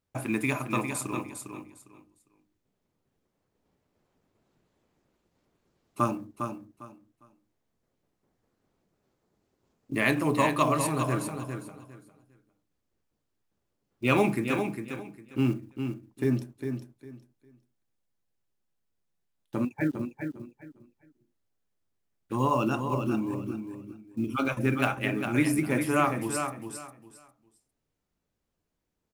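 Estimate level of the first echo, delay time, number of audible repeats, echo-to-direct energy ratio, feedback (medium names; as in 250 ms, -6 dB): -7.0 dB, 404 ms, 3, -7.0 dB, 22%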